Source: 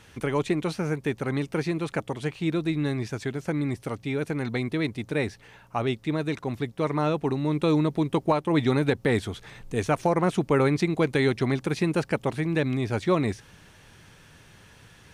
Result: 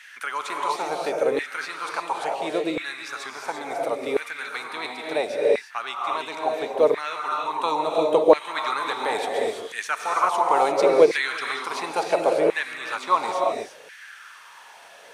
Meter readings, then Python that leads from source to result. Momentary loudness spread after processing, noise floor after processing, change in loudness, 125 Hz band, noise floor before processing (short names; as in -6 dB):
13 LU, -46 dBFS, +2.5 dB, -22.5 dB, -53 dBFS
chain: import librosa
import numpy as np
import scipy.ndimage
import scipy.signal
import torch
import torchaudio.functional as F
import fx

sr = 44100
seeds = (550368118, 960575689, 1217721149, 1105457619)

y = fx.rev_gated(x, sr, seeds[0], gate_ms=370, shape='rising', drr_db=1.0)
y = fx.filter_lfo_highpass(y, sr, shape='saw_down', hz=0.72, low_hz=480.0, high_hz=1900.0, q=4.0)
y = fx.dynamic_eq(y, sr, hz=1800.0, q=1.4, threshold_db=-40.0, ratio=4.0, max_db=-8)
y = y * librosa.db_to_amplitude(3.0)